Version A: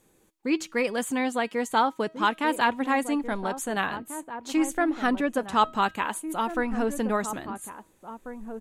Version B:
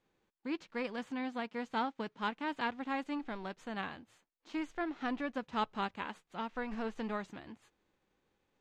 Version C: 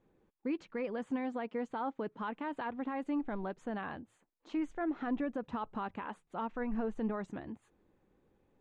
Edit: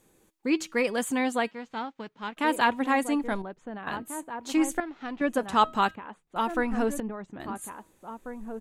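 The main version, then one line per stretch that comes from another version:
A
1.51–2.37 s: from B
3.42–3.87 s: from C
4.80–5.21 s: from B
5.95–6.36 s: from C
7.00–7.40 s: from C

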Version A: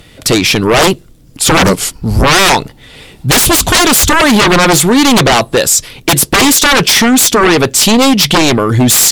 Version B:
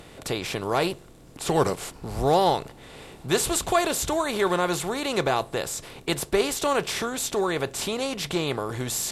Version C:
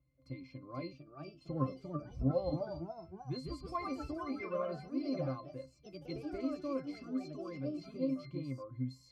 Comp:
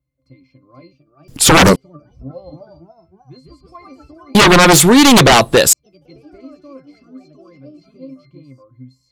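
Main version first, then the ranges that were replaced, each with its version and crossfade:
C
1.28–1.76 s: from A
4.35–5.73 s: from A
not used: B

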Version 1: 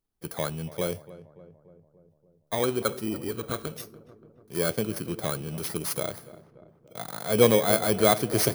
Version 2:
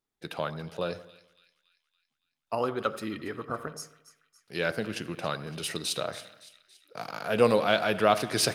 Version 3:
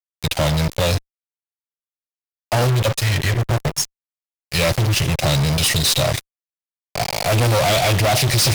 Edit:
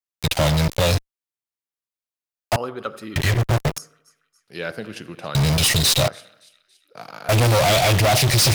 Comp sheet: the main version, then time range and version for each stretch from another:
3
2.56–3.16 s: from 2
3.78–5.35 s: from 2
6.08–7.29 s: from 2
not used: 1

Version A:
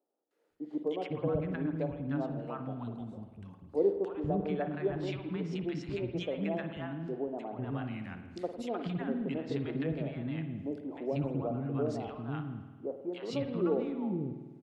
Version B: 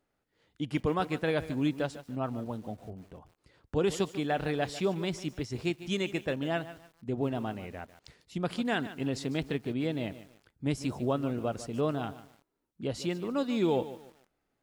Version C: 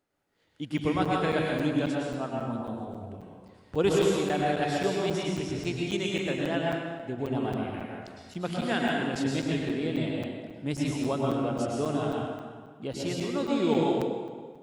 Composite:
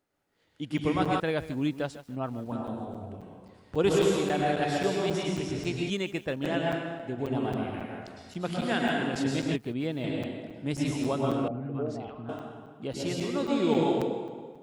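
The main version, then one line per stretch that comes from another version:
C
1.20–2.52 s: from B
5.90–6.44 s: from B
9.56–10.04 s: from B
11.48–12.29 s: from A

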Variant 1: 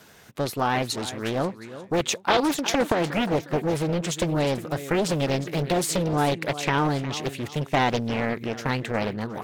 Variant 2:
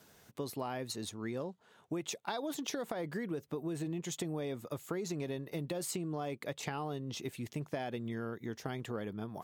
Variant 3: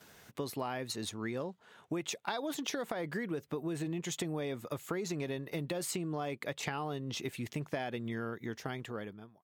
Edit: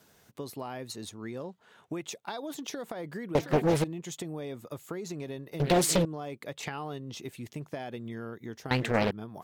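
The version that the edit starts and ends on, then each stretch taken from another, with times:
2
1.44–2.02 s: from 3
3.35–3.84 s: from 1
5.60–6.05 s: from 1
6.56–6.98 s: from 3
8.71–9.11 s: from 1

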